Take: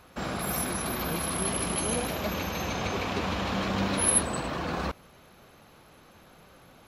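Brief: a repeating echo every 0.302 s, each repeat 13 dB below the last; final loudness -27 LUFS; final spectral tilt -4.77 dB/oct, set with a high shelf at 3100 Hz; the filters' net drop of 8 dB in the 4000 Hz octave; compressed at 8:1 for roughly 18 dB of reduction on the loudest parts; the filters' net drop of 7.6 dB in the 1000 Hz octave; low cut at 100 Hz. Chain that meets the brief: HPF 100 Hz; bell 1000 Hz -9 dB; high shelf 3100 Hz -8.5 dB; bell 4000 Hz -3.5 dB; compressor 8:1, threshold -46 dBFS; feedback echo 0.302 s, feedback 22%, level -13 dB; gain +22.5 dB

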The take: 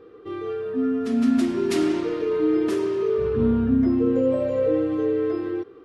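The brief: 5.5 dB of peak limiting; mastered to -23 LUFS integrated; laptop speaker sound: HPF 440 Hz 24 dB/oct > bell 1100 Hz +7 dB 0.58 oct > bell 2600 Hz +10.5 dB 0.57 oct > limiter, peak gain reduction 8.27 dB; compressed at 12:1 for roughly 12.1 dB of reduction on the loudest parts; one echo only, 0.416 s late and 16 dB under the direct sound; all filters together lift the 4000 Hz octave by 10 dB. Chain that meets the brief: bell 4000 Hz +7.5 dB; compressor 12:1, threshold -28 dBFS; limiter -26.5 dBFS; HPF 440 Hz 24 dB/oct; bell 1100 Hz +7 dB 0.58 oct; bell 2600 Hz +10.5 dB 0.57 oct; echo 0.416 s -16 dB; gain +17.5 dB; limiter -15 dBFS

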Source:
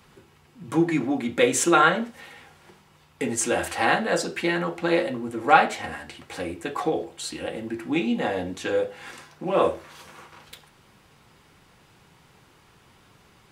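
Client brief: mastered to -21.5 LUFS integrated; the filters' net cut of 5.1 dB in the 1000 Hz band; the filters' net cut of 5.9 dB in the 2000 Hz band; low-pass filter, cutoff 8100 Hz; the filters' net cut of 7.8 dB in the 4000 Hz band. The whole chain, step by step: LPF 8100 Hz; bell 1000 Hz -6 dB; bell 2000 Hz -3.5 dB; bell 4000 Hz -8.5 dB; gain +5.5 dB

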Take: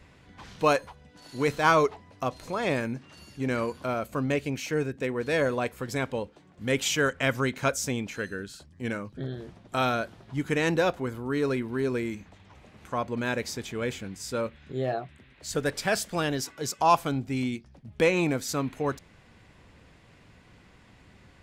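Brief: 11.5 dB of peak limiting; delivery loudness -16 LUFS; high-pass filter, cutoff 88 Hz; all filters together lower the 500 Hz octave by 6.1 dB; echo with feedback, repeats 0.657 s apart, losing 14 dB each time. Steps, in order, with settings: HPF 88 Hz; bell 500 Hz -7.5 dB; limiter -20 dBFS; feedback echo 0.657 s, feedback 20%, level -14 dB; gain +17 dB

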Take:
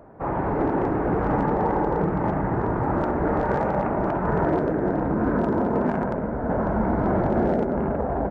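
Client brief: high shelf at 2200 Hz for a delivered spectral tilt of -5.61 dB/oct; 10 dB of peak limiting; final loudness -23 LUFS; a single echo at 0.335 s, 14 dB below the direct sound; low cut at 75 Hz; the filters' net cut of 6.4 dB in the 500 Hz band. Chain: HPF 75 Hz; bell 500 Hz -8 dB; high shelf 2200 Hz -8.5 dB; limiter -23.5 dBFS; echo 0.335 s -14 dB; gain +9 dB

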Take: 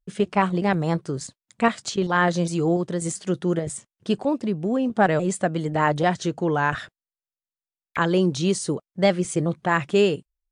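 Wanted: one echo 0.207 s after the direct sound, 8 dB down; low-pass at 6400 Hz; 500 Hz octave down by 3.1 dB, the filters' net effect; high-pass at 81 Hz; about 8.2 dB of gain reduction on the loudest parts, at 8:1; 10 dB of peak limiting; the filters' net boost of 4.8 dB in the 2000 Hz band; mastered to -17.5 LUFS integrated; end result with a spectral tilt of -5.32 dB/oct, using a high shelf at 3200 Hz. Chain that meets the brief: HPF 81 Hz; LPF 6400 Hz; bell 500 Hz -4.5 dB; bell 2000 Hz +7.5 dB; high shelf 3200 Hz -4 dB; compressor 8:1, threshold -21 dBFS; limiter -19.5 dBFS; echo 0.207 s -8 dB; gain +13 dB

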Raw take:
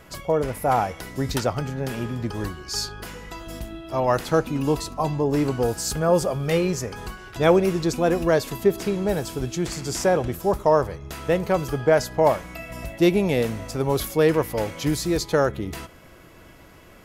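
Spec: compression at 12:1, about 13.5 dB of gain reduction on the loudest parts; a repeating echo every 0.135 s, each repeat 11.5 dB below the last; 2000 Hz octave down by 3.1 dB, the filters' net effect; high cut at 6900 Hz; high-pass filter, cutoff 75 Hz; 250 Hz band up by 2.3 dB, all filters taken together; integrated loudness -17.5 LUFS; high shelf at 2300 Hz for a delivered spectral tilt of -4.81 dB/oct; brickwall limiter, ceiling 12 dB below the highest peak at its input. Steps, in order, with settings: HPF 75 Hz; LPF 6900 Hz; bell 250 Hz +3.5 dB; bell 2000 Hz -7 dB; high shelf 2300 Hz +5.5 dB; compressor 12:1, threshold -25 dBFS; limiter -25.5 dBFS; feedback echo 0.135 s, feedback 27%, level -11.5 dB; gain +17.5 dB

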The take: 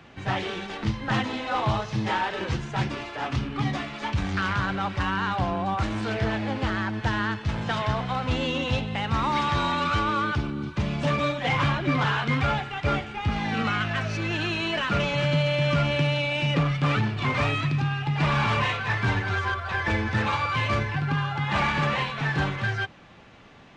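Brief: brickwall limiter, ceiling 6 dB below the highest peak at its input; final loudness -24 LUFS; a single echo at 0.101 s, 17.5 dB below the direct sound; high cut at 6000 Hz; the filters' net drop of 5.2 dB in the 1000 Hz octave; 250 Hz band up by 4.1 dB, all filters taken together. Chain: LPF 6000 Hz; bell 250 Hz +6 dB; bell 1000 Hz -7 dB; limiter -17 dBFS; echo 0.101 s -17.5 dB; gain +3 dB

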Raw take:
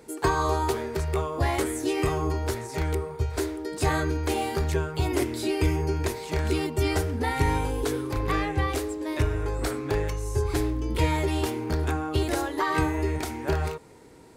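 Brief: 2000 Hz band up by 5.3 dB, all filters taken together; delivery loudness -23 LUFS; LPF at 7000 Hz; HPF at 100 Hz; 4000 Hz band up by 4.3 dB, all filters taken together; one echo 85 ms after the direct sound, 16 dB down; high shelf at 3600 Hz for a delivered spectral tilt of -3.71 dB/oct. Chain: HPF 100 Hz; LPF 7000 Hz; bell 2000 Hz +6.5 dB; high shelf 3600 Hz -7.5 dB; bell 4000 Hz +8.5 dB; echo 85 ms -16 dB; gain +4.5 dB

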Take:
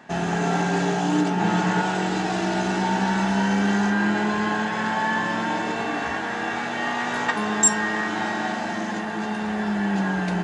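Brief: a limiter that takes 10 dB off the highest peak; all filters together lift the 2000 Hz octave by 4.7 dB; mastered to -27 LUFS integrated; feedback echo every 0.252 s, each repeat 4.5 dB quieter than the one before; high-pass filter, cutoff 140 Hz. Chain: HPF 140 Hz; bell 2000 Hz +6 dB; limiter -15 dBFS; feedback echo 0.252 s, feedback 60%, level -4.5 dB; gain -5 dB

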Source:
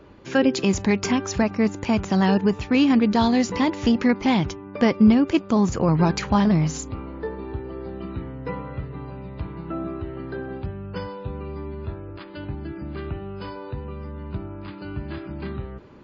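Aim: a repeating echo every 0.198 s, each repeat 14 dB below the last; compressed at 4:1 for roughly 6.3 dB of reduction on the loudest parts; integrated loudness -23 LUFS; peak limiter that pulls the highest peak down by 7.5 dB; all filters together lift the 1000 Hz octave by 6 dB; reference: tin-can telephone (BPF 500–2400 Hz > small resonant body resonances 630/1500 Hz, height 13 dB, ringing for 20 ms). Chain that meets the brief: bell 1000 Hz +8 dB; compressor 4:1, threshold -18 dBFS; limiter -15 dBFS; BPF 500–2400 Hz; feedback echo 0.198 s, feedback 20%, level -14 dB; small resonant body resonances 630/1500 Hz, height 13 dB, ringing for 20 ms; gain +5 dB

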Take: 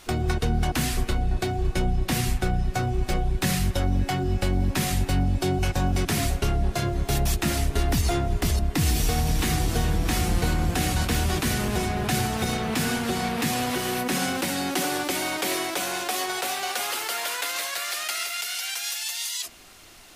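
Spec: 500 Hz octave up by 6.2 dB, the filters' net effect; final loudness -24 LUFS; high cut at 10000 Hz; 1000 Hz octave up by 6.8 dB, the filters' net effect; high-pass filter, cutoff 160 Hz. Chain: HPF 160 Hz; LPF 10000 Hz; bell 500 Hz +7 dB; bell 1000 Hz +6.5 dB; gain +0.5 dB

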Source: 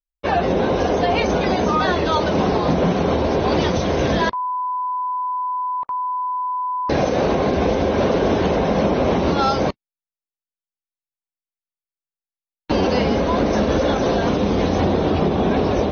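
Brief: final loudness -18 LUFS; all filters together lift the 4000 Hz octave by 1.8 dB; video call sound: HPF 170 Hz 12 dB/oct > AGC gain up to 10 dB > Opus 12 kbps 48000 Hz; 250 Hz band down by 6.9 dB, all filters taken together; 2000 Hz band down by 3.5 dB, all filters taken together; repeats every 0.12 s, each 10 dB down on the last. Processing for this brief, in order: HPF 170 Hz 12 dB/oct; bell 250 Hz -8 dB; bell 2000 Hz -5.5 dB; bell 4000 Hz +4 dB; feedback echo 0.12 s, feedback 32%, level -10 dB; AGC gain up to 10 dB; gain +3 dB; Opus 12 kbps 48000 Hz

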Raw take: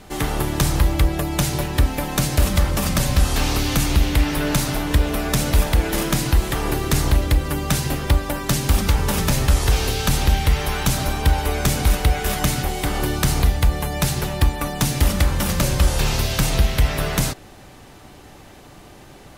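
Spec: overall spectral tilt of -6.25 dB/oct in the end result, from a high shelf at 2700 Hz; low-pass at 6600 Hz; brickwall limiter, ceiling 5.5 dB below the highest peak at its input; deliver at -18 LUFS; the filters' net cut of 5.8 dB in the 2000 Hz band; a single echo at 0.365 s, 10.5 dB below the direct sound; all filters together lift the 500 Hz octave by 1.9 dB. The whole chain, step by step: LPF 6600 Hz; bell 500 Hz +3 dB; bell 2000 Hz -4.5 dB; high shelf 2700 Hz -7.5 dB; limiter -13 dBFS; echo 0.365 s -10.5 dB; gain +5 dB

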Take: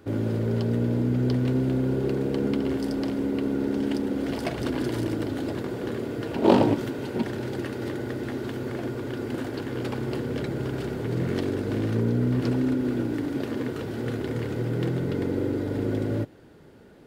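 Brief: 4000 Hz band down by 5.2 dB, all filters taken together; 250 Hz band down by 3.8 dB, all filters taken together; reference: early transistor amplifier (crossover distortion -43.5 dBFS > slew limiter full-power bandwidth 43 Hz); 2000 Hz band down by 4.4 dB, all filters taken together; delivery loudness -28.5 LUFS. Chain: bell 250 Hz -4.5 dB; bell 2000 Hz -5 dB; bell 4000 Hz -5 dB; crossover distortion -43.5 dBFS; slew limiter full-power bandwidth 43 Hz; gain +3 dB

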